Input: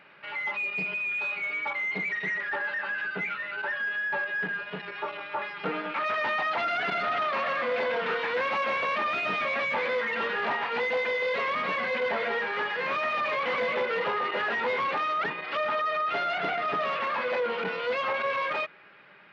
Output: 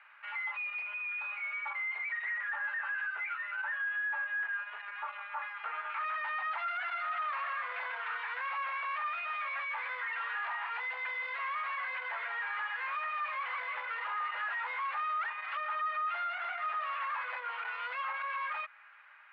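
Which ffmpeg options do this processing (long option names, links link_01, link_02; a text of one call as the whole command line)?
ffmpeg -i in.wav -filter_complex "[0:a]asettb=1/sr,asplit=3[link_01][link_02][link_03];[link_01]atrim=end=0.814[link_04];[link_02]atrim=start=0.81:end=5.9,asetpts=PTS-STARTPTS,afade=type=in:duration=0.004:curve=qsin,afade=type=out:start_time=5.086:duration=0.004:curve=qsin,highshelf=frequency=5300:gain=-11[link_05];[link_03]atrim=start=5.896[link_06];[link_04][link_05]acrossfade=duration=0.004:curve1=hsin:curve2=qsin[link_07];[link_07][link_06]acrossfade=duration=0.004:curve1=qsin:curve2=hsin,highpass=frequency=990:width=0.5412,highpass=frequency=990:width=1.3066,alimiter=level_in=3.5dB:limit=-24dB:level=0:latency=1:release=160,volume=-3.5dB,lowpass=2000" out.wav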